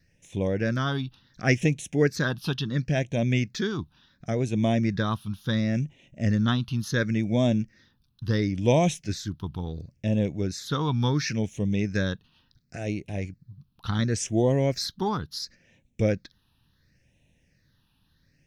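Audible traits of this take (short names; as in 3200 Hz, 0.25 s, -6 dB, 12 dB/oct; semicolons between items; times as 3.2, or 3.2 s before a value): phasing stages 6, 0.71 Hz, lowest notch 540–1300 Hz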